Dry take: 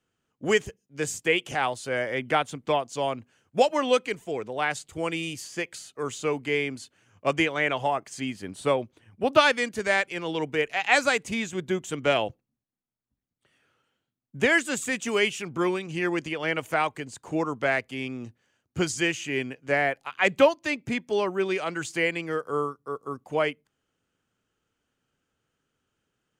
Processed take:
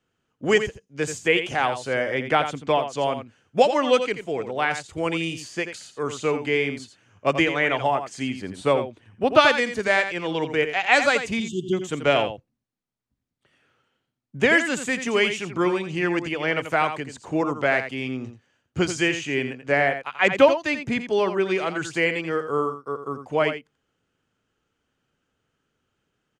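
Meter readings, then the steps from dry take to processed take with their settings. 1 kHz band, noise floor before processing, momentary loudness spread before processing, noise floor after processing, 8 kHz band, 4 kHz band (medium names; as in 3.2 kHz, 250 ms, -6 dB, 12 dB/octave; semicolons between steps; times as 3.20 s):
+3.5 dB, -82 dBFS, 12 LU, -78 dBFS, -0.5 dB, +3.0 dB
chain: spectral selection erased 11.40–11.73 s, 430–2700 Hz; distance through air 51 m; delay 85 ms -9.5 dB; trim +3.5 dB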